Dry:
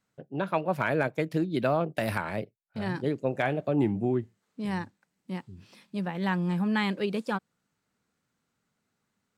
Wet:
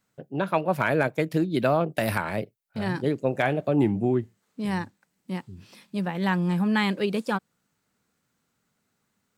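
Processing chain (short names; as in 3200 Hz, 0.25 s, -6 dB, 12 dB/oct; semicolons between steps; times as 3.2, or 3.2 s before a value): high shelf 9400 Hz +7 dB; gain +3.5 dB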